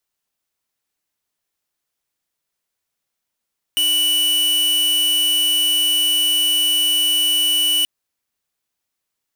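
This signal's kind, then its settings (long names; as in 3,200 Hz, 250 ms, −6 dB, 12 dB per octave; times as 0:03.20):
tone square 2,960 Hz −17 dBFS 4.08 s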